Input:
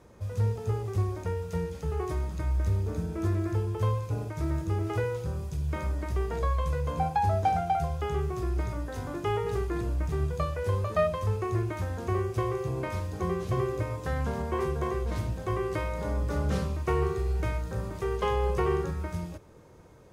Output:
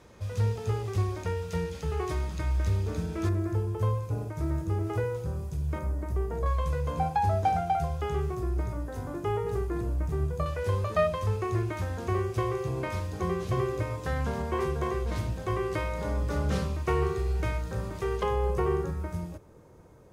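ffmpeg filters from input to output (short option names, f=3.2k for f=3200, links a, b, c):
-af "asetnsamples=n=441:p=0,asendcmd='3.29 equalizer g -5;5.79 equalizer g -12;6.46 equalizer g -0.5;8.35 equalizer g -7;10.46 equalizer g 2.5;18.23 equalizer g -5.5',equalizer=f=3.4k:t=o:w=2.3:g=7"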